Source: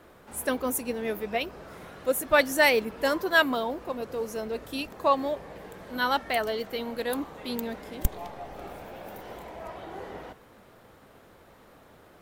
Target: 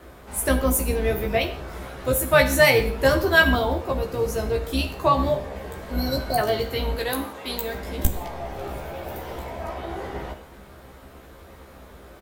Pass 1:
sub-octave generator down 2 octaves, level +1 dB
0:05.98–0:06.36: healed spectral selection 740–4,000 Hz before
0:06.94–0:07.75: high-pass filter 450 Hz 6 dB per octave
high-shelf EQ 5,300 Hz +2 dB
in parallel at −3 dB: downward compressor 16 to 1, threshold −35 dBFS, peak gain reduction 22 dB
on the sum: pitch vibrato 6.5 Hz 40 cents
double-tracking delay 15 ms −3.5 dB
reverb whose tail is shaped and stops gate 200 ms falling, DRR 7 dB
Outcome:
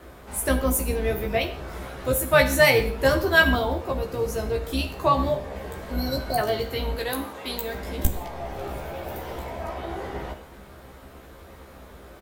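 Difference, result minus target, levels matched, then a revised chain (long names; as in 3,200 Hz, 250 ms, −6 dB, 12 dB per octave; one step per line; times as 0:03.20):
downward compressor: peak gain reduction +8 dB
sub-octave generator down 2 octaves, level +1 dB
0:05.98–0:06.36: healed spectral selection 740–4,000 Hz before
0:06.94–0:07.75: high-pass filter 450 Hz 6 dB per octave
high-shelf EQ 5,300 Hz +2 dB
in parallel at −3 dB: downward compressor 16 to 1, threshold −26.5 dBFS, peak gain reduction 14 dB
on the sum: pitch vibrato 6.5 Hz 40 cents
double-tracking delay 15 ms −3.5 dB
reverb whose tail is shaped and stops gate 200 ms falling, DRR 7 dB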